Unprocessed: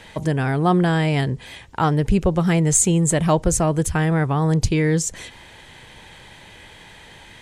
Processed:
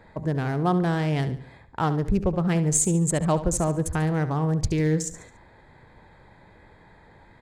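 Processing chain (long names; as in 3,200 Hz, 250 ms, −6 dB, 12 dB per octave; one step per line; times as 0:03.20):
adaptive Wiener filter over 15 samples
on a send: repeating echo 71 ms, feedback 41%, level −13 dB
on the sum: level −5 dB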